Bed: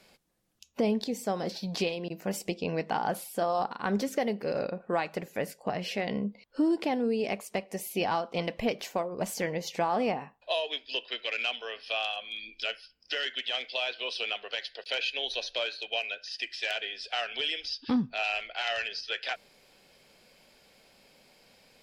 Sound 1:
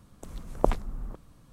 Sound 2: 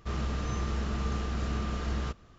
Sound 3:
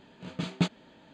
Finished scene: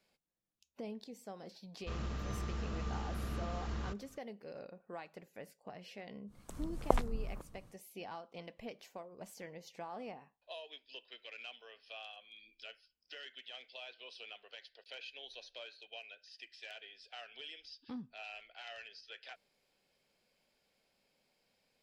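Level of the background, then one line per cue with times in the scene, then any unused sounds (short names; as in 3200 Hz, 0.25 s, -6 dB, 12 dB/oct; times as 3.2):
bed -17.5 dB
1.81 add 2 -8 dB
6.26 add 1 -1.5 dB, fades 0.10 s + harmonic tremolo 2.3 Hz, depth 50%, crossover 790 Hz
not used: 3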